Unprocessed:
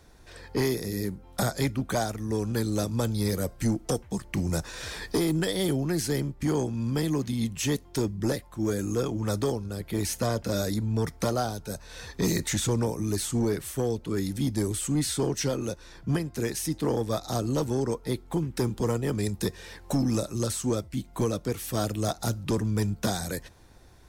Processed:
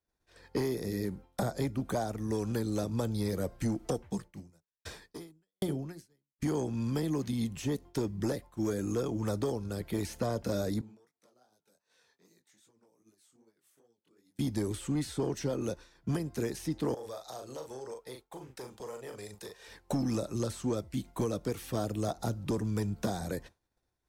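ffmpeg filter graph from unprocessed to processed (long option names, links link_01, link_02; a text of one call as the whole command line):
ffmpeg -i in.wav -filter_complex "[0:a]asettb=1/sr,asplit=3[link_01][link_02][link_03];[link_01]atrim=end=4.084[link_04];[link_02]atrim=start=4.08:end=6.42,asetpts=PTS-STARTPTS,afade=type=in:duration=0.004:curve=qsin,afade=type=out:start_time=2.336:duration=0.004:curve=qsin,equalizer=frequency=150:width_type=o:width=1.5:gain=3.5,bandreject=frequency=60:width_type=h:width=6,bandreject=frequency=120:width_type=h:width=6,bandreject=frequency=180:width_type=h:width=6,bandreject=frequency=240:width_type=h:width=6,bandreject=frequency=300:width_type=h:width=6,bandreject=frequency=360:width_type=h:width=6,bandreject=frequency=420:width_type=h:width=6,bandreject=frequency=480:width_type=h:width=6,bandreject=frequency=540:width_type=h:width=6,aeval=exprs='val(0)*pow(10,-38*if(lt(mod(1.3*n/s,1),2*abs(1.3)/1000),1-mod(1.3*n/s,1)/(2*abs(1.3)/1000),(mod(1.3*n/s,1)-2*abs(1.3)/1000)/(1-2*abs(1.3)/1000))/20)':channel_layout=same[link_05];[link_03]atrim=start=6.416[link_06];[link_04][link_05]acrossfade=duration=0.004:curve1=hsin:curve2=qsin[link_07];[link_07][link_06]acrossfade=duration=0.004:curve1=qsin:curve2=hsin,asettb=1/sr,asplit=3[link_08][link_09][link_10];[link_08]atrim=end=10.814[link_11];[link_09]atrim=start=10.81:end=14.39,asetpts=PTS-STARTPTS,afade=type=in:duration=0.004:curve=qsin,afade=type=out:start_time=3.576:duration=0.004:curve=qsin,highpass=230,acompressor=threshold=-42dB:ratio=16:attack=3.2:release=140:knee=1:detection=peak,flanger=delay=17.5:depth=7.2:speed=2.6[link_12];[link_10]atrim=start=14.386[link_13];[link_11][link_12]acrossfade=duration=0.004:curve1=hsin:curve2=qsin[link_14];[link_14][link_13]acrossfade=duration=0.004:curve1=qsin:curve2=hsin,asettb=1/sr,asplit=3[link_15][link_16][link_17];[link_15]atrim=end=16.944[link_18];[link_16]atrim=start=16.94:end=19.68,asetpts=PTS-STARTPTS,afade=type=in:duration=0.004:curve=qsin,afade=type=out:start_time=2.736:duration=0.004:curve=qsin,lowshelf=frequency=360:width_type=q:width=1.5:gain=-9.5,asplit=2[link_19][link_20];[link_20]adelay=39,volume=-6dB[link_21];[link_19][link_21]amix=inputs=2:normalize=0,atrim=end_sample=120834,acompressor=threshold=-37dB:ratio=6:attack=3.2:release=140:knee=1:detection=peak[link_22];[link_17]atrim=start=19.676[link_23];[link_18][link_22]acrossfade=duration=0.004:curve1=hsin:curve2=qsin[link_24];[link_24][link_23]acrossfade=duration=0.004:curve1=qsin:curve2=hsin,agate=range=-33dB:threshold=-37dB:ratio=3:detection=peak,lowshelf=frequency=150:gain=-5,acrossover=split=1000|4600[link_25][link_26][link_27];[link_25]acompressor=threshold=-28dB:ratio=4[link_28];[link_26]acompressor=threshold=-49dB:ratio=4[link_29];[link_27]acompressor=threshold=-50dB:ratio=4[link_30];[link_28][link_29][link_30]amix=inputs=3:normalize=0" out.wav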